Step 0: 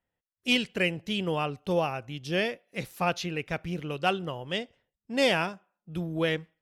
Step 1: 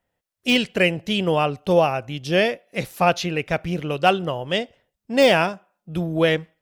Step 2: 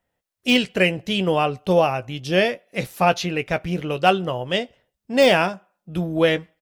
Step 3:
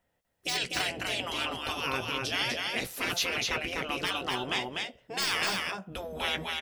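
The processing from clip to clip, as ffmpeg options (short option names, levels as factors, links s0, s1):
-af "deesser=0.65,equalizer=f=630:w=2.3:g=4.5,volume=2.37"
-filter_complex "[0:a]asplit=2[s0][s1];[s1]adelay=16,volume=0.251[s2];[s0][s2]amix=inputs=2:normalize=0"
-af "afftfilt=real='re*lt(hypot(re,im),0.178)':imag='im*lt(hypot(re,im),0.178)':win_size=1024:overlap=0.75,aecho=1:1:248:0.708"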